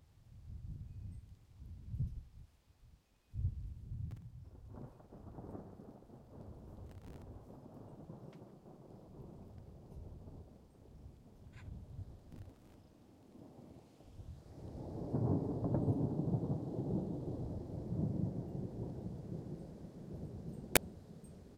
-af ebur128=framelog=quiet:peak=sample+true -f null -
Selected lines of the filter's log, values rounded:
Integrated loudness:
  I:         -42.0 LUFS
  Threshold: -54.2 LUFS
Loudness range:
  LRA:        17.0 LU
  Threshold: -64.5 LUFS
  LRA low:   -55.7 LUFS
  LRA high:  -38.7 LUFS
Sample peak:
  Peak:       -8.6 dBFS
True peak:
  Peak:       -8.0 dBFS